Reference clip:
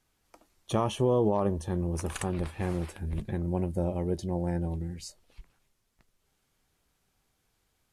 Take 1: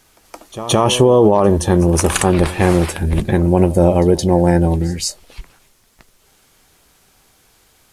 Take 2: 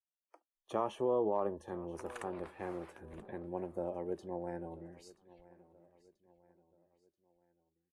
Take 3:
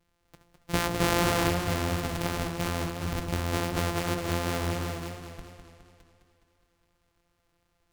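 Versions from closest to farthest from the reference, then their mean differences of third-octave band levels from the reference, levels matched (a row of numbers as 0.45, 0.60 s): 1, 2, 3; 3.5, 5.5, 15.5 dB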